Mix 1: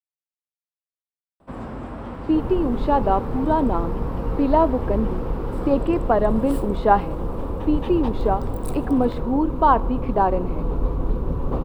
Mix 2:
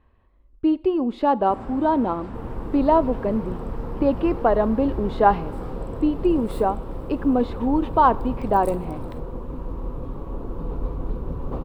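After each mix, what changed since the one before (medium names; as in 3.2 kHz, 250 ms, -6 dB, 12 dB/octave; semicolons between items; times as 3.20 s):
speech: entry -1.65 s; first sound -4.0 dB; second sound -5.0 dB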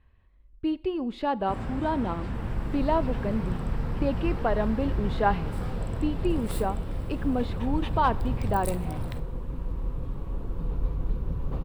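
first sound +6.5 dB; master: add high-order bell 540 Hz -8 dB 2.8 oct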